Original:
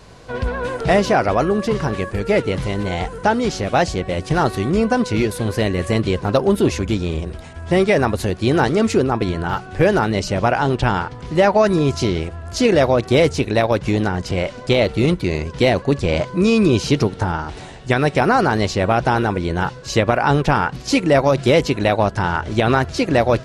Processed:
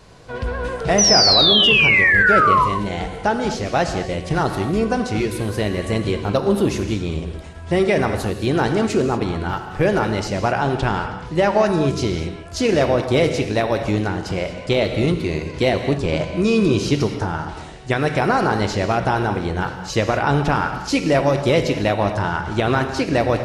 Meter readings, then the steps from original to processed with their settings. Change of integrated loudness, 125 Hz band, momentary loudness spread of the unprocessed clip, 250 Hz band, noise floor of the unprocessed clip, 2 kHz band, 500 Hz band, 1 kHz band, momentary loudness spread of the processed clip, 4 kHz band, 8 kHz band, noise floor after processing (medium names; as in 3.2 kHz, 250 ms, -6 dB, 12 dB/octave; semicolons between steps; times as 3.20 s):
0.0 dB, -2.0 dB, 8 LU, -2.0 dB, -36 dBFS, +3.0 dB, -2.0 dB, -0.5 dB, 13 LU, +7.5 dB, +6.0 dB, -33 dBFS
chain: painted sound fall, 0.98–2.65 s, 970–6100 Hz -12 dBFS; gated-style reverb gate 260 ms flat, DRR 6.5 dB; trim -3 dB